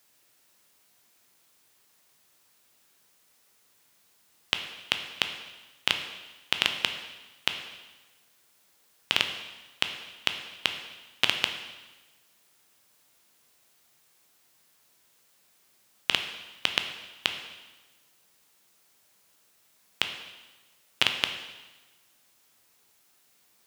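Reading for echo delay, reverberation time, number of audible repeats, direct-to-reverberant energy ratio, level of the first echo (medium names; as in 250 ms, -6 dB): no echo, 1.2 s, no echo, 5.5 dB, no echo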